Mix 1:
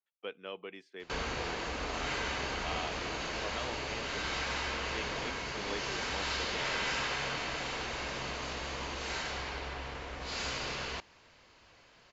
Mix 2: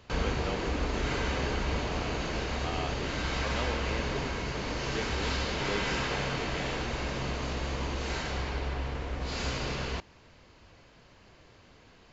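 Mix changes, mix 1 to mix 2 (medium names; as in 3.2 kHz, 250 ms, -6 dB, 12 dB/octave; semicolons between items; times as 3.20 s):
background: entry -1.00 s; master: add bass shelf 430 Hz +11.5 dB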